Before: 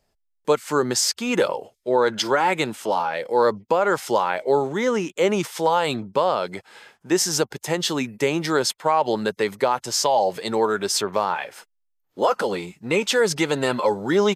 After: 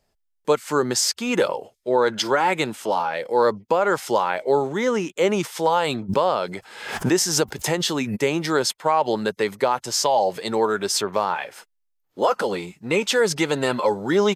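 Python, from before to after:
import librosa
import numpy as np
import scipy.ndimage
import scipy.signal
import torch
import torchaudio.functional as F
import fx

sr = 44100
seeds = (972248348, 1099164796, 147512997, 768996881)

y = fx.pre_swell(x, sr, db_per_s=66.0, at=(6.08, 8.15), fade=0.02)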